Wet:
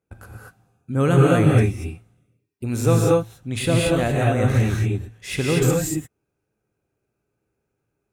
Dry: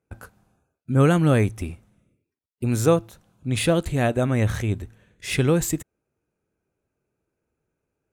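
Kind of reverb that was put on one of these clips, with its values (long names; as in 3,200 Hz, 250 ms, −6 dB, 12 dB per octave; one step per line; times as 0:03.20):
reverb whose tail is shaped and stops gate 260 ms rising, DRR −3 dB
level −2.5 dB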